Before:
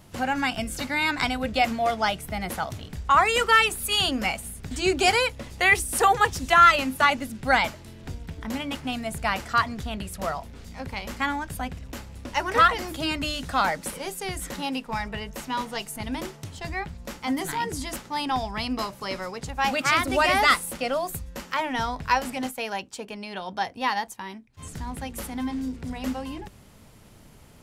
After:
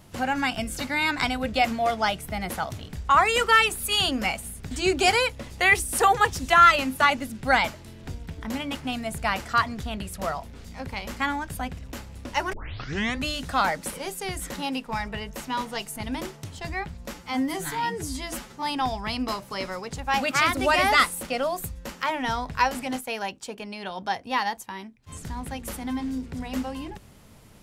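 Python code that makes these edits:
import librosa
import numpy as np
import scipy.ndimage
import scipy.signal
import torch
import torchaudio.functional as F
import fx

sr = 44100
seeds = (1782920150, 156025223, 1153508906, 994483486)

y = fx.edit(x, sr, fx.tape_start(start_s=12.53, length_s=0.73),
    fx.stretch_span(start_s=17.14, length_s=0.99, factor=1.5), tone=tone)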